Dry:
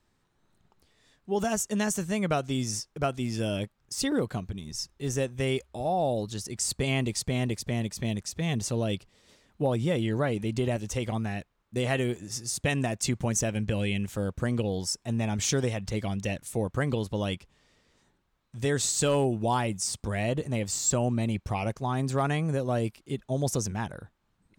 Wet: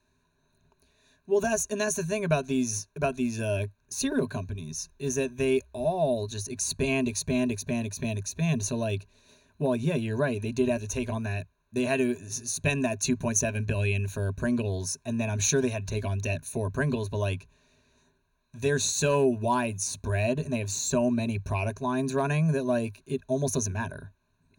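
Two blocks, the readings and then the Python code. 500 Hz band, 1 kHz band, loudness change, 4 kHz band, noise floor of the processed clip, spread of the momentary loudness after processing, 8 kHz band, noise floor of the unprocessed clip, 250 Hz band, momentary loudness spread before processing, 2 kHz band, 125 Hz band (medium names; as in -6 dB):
+2.0 dB, -1.0 dB, +1.0 dB, -2.5 dB, -71 dBFS, 7 LU, +1.0 dB, -72 dBFS, +1.0 dB, 6 LU, +2.0 dB, 0.0 dB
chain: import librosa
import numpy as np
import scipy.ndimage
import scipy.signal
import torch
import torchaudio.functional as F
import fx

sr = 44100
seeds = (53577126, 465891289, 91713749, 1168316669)

y = fx.ripple_eq(x, sr, per_octave=1.5, db=16)
y = y * librosa.db_to_amplitude(-2.0)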